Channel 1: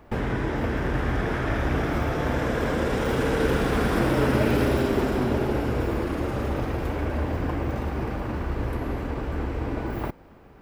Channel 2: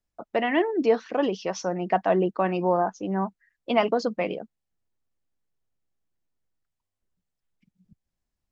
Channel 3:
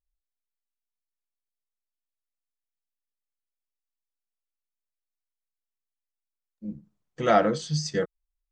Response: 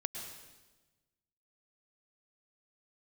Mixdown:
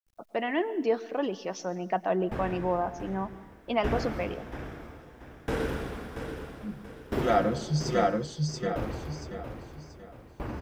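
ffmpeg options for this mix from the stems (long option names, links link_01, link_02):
-filter_complex "[0:a]aeval=exprs='val(0)*pow(10,-39*if(lt(mod(0.61*n/s,1),2*abs(0.61)/1000),1-mod(0.61*n/s,1)/(2*abs(0.61)/1000),(mod(0.61*n/s,1)-2*abs(0.61)/1000)/(1-2*abs(0.61)/1000))/20)':channel_layout=same,adelay=2200,volume=-7dB,asplit=3[link_01][link_02][link_03];[link_02]volume=-7dB[link_04];[link_03]volume=-5dB[link_05];[1:a]volume=-7.5dB,asplit=3[link_06][link_07][link_08];[link_07]volume=-11dB[link_09];[2:a]lowshelf=frequency=110:gain=10.5,aecho=1:1:5.7:0.53,volume=2.5dB,asplit=3[link_10][link_11][link_12];[link_11]volume=-21.5dB[link_13];[link_12]volume=-10.5dB[link_14];[link_08]apad=whole_len=375720[link_15];[link_10][link_15]sidechaingate=range=-11dB:threshold=-59dB:ratio=16:detection=peak[link_16];[3:a]atrim=start_sample=2205[link_17];[link_04][link_09][link_13]amix=inputs=3:normalize=0[link_18];[link_18][link_17]afir=irnorm=-1:irlink=0[link_19];[link_05][link_14]amix=inputs=2:normalize=0,aecho=0:1:682|1364|2046|2728|3410:1|0.34|0.116|0.0393|0.0134[link_20];[link_01][link_06][link_16][link_19][link_20]amix=inputs=5:normalize=0,acrusher=bits=11:mix=0:aa=0.000001"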